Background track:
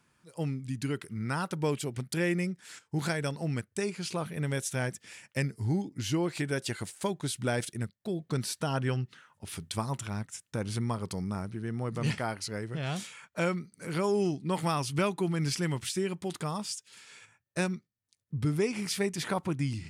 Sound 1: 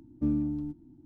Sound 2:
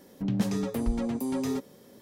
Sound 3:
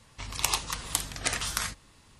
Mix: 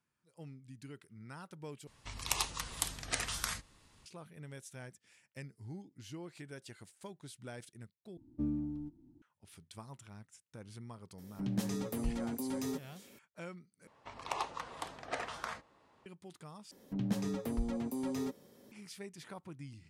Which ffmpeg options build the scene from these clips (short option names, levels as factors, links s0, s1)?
-filter_complex "[3:a]asplit=2[s0][s1];[2:a]asplit=2[s2][s3];[0:a]volume=0.141[s4];[s2]highshelf=f=4700:g=7.5[s5];[s1]bandpass=f=660:t=q:w=1.1:csg=0[s6];[s4]asplit=5[s7][s8][s9][s10][s11];[s7]atrim=end=1.874[s12];[s0]atrim=end=2.19,asetpts=PTS-STARTPTS,volume=0.473[s13];[s8]atrim=start=4.056:end=8.174[s14];[1:a]atrim=end=1.05,asetpts=PTS-STARTPTS,volume=0.422[s15];[s9]atrim=start=9.216:end=13.874[s16];[s6]atrim=end=2.19[s17];[s10]atrim=start=16.056:end=16.714[s18];[s3]atrim=end=2.01,asetpts=PTS-STARTPTS,volume=0.447[s19];[s11]atrim=start=18.716[s20];[s5]atrim=end=2.01,asetpts=PTS-STARTPTS,volume=0.398,afade=t=in:d=0.004:c=hsin,afade=t=out:st=2.006:d=0.004:c=hsin,adelay=11180[s21];[s12][s13]acrossfade=d=0.004:c1=hsin:c2=hsin[s22];[s22][s14]acrossfade=d=0.004:c1=hsin:c2=hsin[s23];[s23][s15]acrossfade=d=0.004:c1=hsin:c2=hsin[s24];[s24][s16]acrossfade=d=0.004:c1=hsin:c2=hsin[s25];[s25][s17]acrossfade=d=0.004:c1=hsin:c2=hsin[s26];[s26][s18]acrossfade=d=0.004:c1=hsin:c2=hsin[s27];[s27][s19]acrossfade=d=0.004:c1=hsin:c2=hsin[s28];[s28][s20]acrossfade=d=0.004:c1=hsin:c2=hsin[s29];[s29][s21]amix=inputs=2:normalize=0"